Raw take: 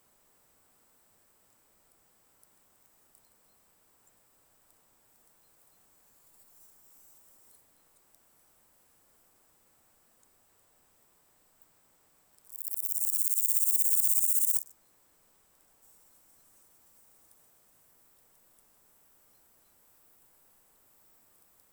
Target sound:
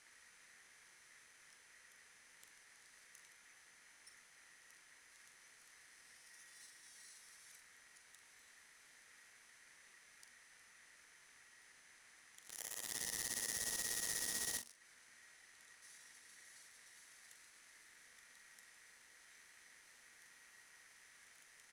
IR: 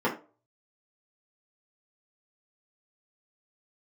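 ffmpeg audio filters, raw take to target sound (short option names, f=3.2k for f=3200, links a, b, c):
-filter_complex "[0:a]lowpass=f=7.3k:w=0.5412,lowpass=f=7.3k:w=1.3066,equalizer=f=1.2k:t=o:w=2.7:g=-13.5,acompressor=threshold=-56dB:ratio=2.5,aeval=exprs='0.00891*(cos(1*acos(clip(val(0)/0.00891,-1,1)))-cos(1*PI/2))+0.002*(cos(4*acos(clip(val(0)/0.00891,-1,1)))-cos(4*PI/2))':c=same,aeval=exprs='val(0)*sin(2*PI*1900*n/s)':c=same,asplit=2[a][b];[b]adelay=43,volume=-9.5dB[c];[a][c]amix=inputs=2:normalize=0,asplit=2[d][e];[1:a]atrim=start_sample=2205[f];[e][f]afir=irnorm=-1:irlink=0,volume=-26.5dB[g];[d][g]amix=inputs=2:normalize=0,volume=13.5dB"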